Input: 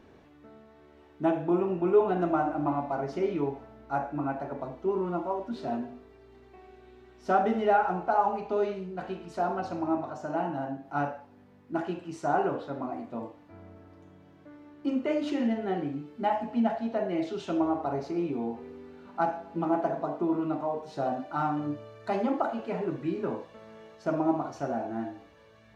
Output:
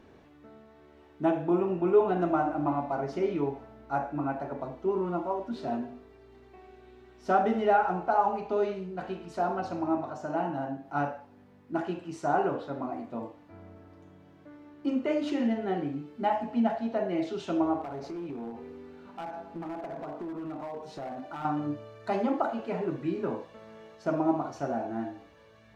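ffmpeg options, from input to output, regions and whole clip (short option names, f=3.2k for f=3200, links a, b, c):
-filter_complex "[0:a]asettb=1/sr,asplit=3[a][b][c];[a]atrim=end=17.814[d];[b]atrim=start=17.81:end=21.45,asetpts=PTS-STARTPTS,afade=t=in:d=0.004:c=qsin,afade=t=out:st=3.636:d=0.004:c=qsin,acompressor=threshold=-34dB:ratio=4:attack=3.2:release=140:knee=1:detection=peak,asoftclip=type=hard:threshold=-33dB[e];[c]atrim=start=21.446[f];[d][e]acrossfade=d=0.004:c1=hsin:c2=qsin[g];[g][f]acrossfade=d=0.004:c1=qsin:c2=hsin"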